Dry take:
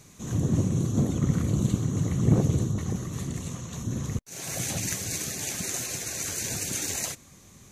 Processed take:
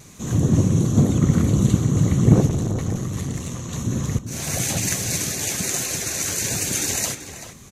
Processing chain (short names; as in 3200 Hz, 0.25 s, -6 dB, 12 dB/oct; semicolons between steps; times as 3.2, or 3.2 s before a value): vibrato 1.1 Hz 16 cents; outdoor echo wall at 66 m, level -9 dB; 2.46–3.69 tube stage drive 24 dB, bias 0.45; gain +7 dB